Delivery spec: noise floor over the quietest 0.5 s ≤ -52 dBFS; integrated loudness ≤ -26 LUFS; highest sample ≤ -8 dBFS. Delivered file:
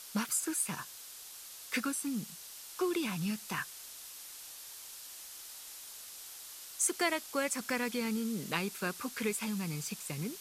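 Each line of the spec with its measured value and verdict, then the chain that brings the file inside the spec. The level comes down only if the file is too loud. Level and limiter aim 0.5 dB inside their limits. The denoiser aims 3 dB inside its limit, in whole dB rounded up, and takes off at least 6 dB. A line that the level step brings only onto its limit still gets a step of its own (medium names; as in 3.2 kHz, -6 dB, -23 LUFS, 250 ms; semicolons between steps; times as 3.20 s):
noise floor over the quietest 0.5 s -49 dBFS: fail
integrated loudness -36.5 LUFS: pass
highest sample -15.5 dBFS: pass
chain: noise reduction 6 dB, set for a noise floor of -49 dBFS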